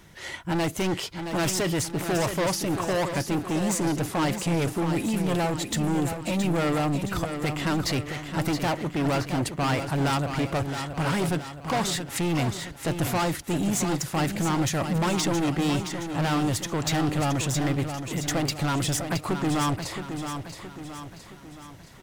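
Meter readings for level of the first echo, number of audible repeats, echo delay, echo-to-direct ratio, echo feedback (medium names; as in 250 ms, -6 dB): -8.0 dB, 5, 670 ms, -7.0 dB, 49%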